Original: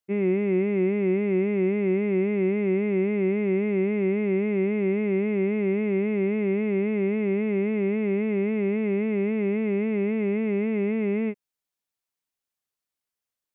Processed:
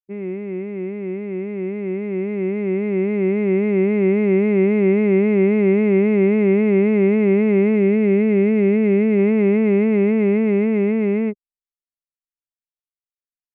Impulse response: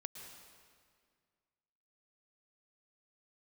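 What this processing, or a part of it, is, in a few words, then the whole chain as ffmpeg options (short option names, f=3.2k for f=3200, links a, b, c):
voice memo with heavy noise removal: -filter_complex "[0:a]asettb=1/sr,asplit=3[a][b][c];[a]atrim=end=7.764[d];[b]atrim=start=7.76:end=9.19,asetpts=PTS-STARTPTS,afade=t=in:d=0.004:c=qsin,afade=t=out:st=1.426:d=0.004:c=qsin,equalizer=f=980:w=1.6:g=-5[e];[c]atrim=start=9.186[f];[d][e]acrossfade=d=0.004:c1=hsin:c2=qsin[g];[g][f]acrossfade=d=0.004:c1=qsin:c2=hsin,anlmdn=15.8,dynaudnorm=f=690:g=9:m=15dB,volume=-4dB"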